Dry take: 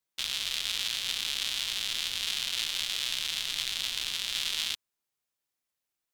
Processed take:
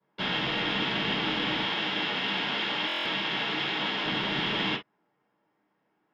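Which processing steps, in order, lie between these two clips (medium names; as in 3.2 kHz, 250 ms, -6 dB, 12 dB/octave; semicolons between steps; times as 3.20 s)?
1.65–4.06 s: high-pass 330 Hz 6 dB/octave; saturation -22.5 dBFS, distortion -11 dB; distance through air 260 m; reverberation, pre-delay 3 ms, DRR -10.5 dB; buffer glitch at 2.87 s, samples 1024, times 7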